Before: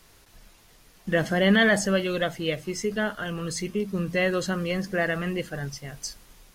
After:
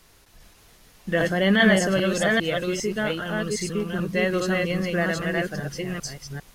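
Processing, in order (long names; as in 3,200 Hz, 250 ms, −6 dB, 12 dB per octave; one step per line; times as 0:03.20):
delay that plays each chunk backwards 400 ms, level −1.5 dB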